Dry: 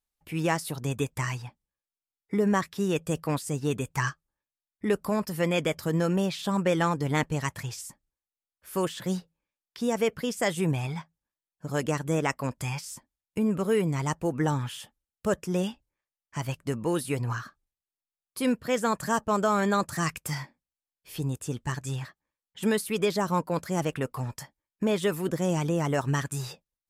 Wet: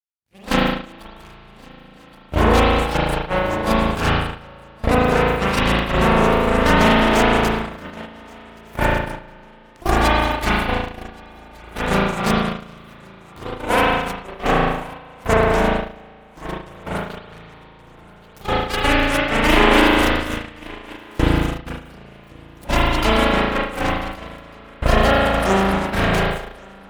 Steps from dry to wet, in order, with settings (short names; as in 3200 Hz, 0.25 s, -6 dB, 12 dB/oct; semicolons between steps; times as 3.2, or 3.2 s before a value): repeated pitch sweeps +9.5 st, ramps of 0.268 s; recorder AGC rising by 10 dB/s; added harmonics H 4 -12 dB, 5 -20 dB, 6 -10 dB, 7 -13 dB, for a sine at -12 dBFS; formant shift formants -3 st; full-wave rectifier; HPF 46 Hz 12 dB/oct; low shelf 210 Hz +12 dB; swung echo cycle 1.498 s, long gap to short 3:1, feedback 33%, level -8 dB; spring tank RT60 2.7 s, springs 36 ms, chirp 75 ms, DRR -9 dB; gate -21 dBFS, range -18 dB; gain +4 dB